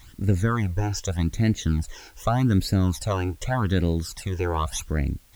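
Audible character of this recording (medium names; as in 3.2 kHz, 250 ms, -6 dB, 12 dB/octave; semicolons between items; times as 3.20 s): phasing stages 12, 0.84 Hz, lowest notch 190–1100 Hz; a quantiser's noise floor 10-bit, dither triangular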